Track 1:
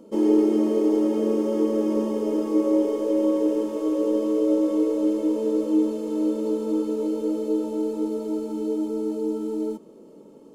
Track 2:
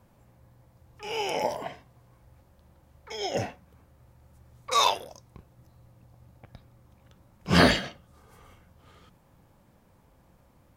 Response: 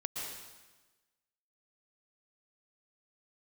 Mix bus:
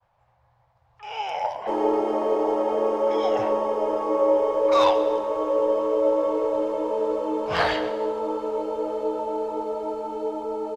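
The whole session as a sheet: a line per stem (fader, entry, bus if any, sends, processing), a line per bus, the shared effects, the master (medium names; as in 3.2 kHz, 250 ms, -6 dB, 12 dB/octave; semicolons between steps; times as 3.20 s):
+2.0 dB, 1.55 s, no send, none
-9.5 dB, 0.00 s, send -13.5 dB, expander -57 dBFS; peaking EQ 4 kHz +8 dB 2 oct; one-sided clip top -17.5 dBFS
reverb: on, RT60 1.2 s, pre-delay 108 ms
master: FFT filter 130 Hz 0 dB, 250 Hz -18 dB, 760 Hz +13 dB, 10 kHz -14 dB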